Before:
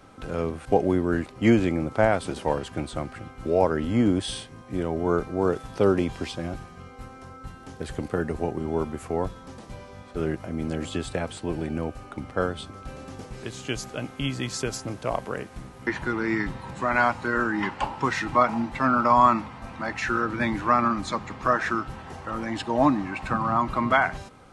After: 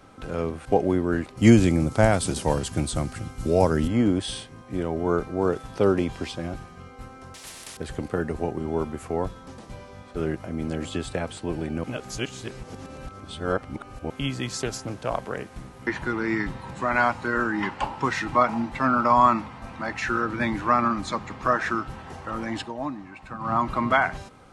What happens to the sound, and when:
1.37–3.88 s: tone controls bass +8 dB, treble +14 dB
7.34–7.77 s: spectrum-flattening compressor 10:1
11.84–14.10 s: reverse
14.61–15.40 s: loudspeaker Doppler distortion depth 0.16 ms
22.59–23.53 s: dip -11 dB, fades 0.15 s

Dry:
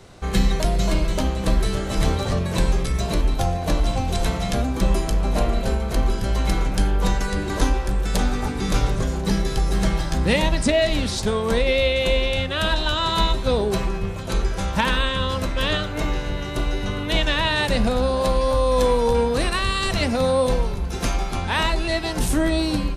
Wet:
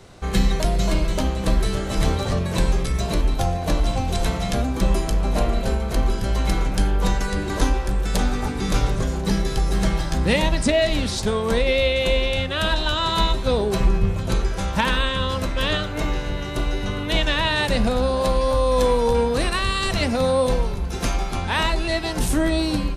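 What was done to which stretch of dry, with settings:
13.80–14.34 s: bass shelf 230 Hz +8 dB

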